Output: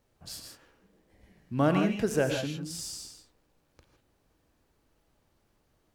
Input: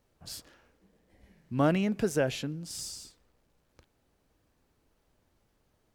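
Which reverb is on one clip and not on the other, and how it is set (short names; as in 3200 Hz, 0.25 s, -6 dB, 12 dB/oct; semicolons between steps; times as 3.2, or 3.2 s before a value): non-linear reverb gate 0.18 s rising, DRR 4 dB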